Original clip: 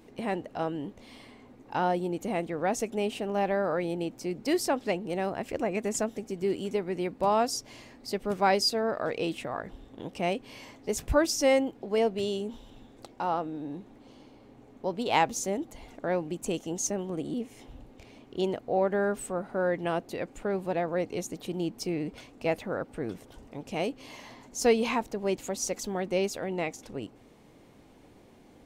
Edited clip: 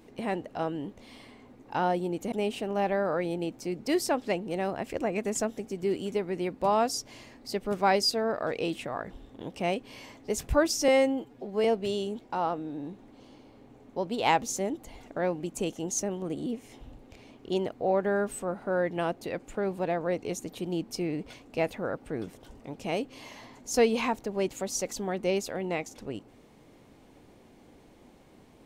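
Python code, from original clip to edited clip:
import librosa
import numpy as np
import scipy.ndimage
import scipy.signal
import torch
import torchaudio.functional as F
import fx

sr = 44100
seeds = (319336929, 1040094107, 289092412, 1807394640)

y = fx.edit(x, sr, fx.cut(start_s=2.32, length_s=0.59),
    fx.stretch_span(start_s=11.47, length_s=0.51, factor=1.5),
    fx.cut(start_s=12.52, length_s=0.54), tone=tone)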